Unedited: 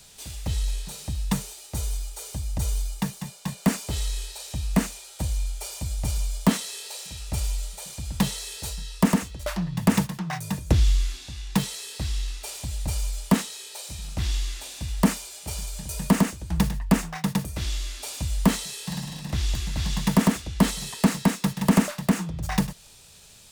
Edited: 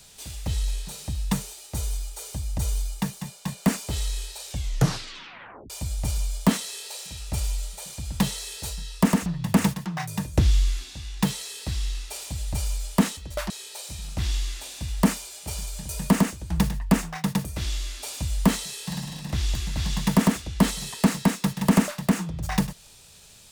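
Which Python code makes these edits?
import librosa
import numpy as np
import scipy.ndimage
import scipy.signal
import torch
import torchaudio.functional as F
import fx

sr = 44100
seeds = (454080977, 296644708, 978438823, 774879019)

y = fx.edit(x, sr, fx.tape_stop(start_s=4.46, length_s=1.24),
    fx.move(start_s=9.26, length_s=0.33, to_s=13.5), tone=tone)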